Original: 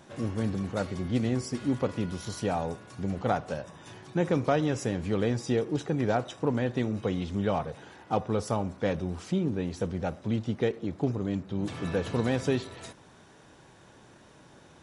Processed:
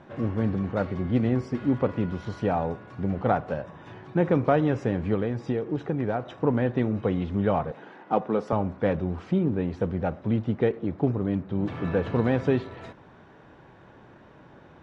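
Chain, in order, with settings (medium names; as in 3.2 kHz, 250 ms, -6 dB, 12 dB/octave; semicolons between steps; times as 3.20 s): low-pass 2.1 kHz 12 dB/octave; 5.14–6.29 s: compression, threshold -27 dBFS, peak gain reduction 6 dB; 7.71–8.53 s: high-pass 170 Hz 24 dB/octave; trim +4 dB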